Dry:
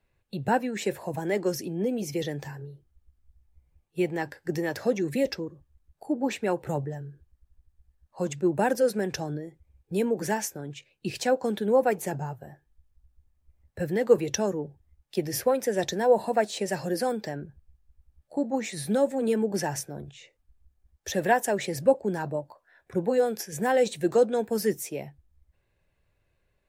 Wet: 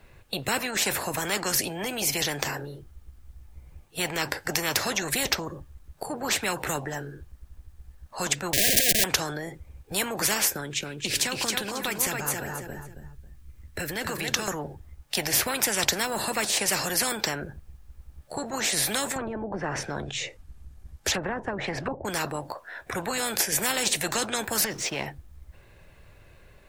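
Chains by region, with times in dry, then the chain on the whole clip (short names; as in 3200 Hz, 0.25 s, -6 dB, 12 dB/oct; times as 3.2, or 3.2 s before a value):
8.53–9.04 block floating point 5-bit + Schmitt trigger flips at -38 dBFS + brick-wall FIR band-stop 720–1600 Hz
10.53–14.48 bell 700 Hz -12.5 dB 1.1 oct + compressor 2.5:1, threshold -35 dBFS + feedback echo 0.272 s, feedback 24%, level -6.5 dB
19.16–22.05 tone controls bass +7 dB, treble +1 dB + treble ducked by the level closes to 460 Hz, closed at -20 dBFS
24.64–25.06 LPF 5500 Hz 24 dB/oct + compressor 3:1, threshold -29 dBFS + backlash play -55.5 dBFS
whole clip: bell 1300 Hz +2 dB; spectral compressor 4:1; gain +6.5 dB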